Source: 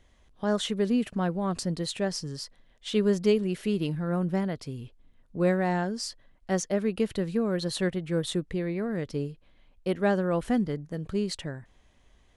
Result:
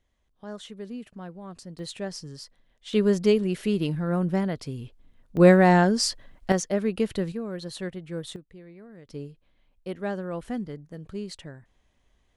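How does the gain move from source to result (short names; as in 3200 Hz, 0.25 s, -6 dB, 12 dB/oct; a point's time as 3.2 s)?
-12 dB
from 1.79 s -4.5 dB
from 2.93 s +2.5 dB
from 5.37 s +9.5 dB
from 6.52 s +1.5 dB
from 7.32 s -6 dB
from 8.36 s -16.5 dB
from 9.09 s -6 dB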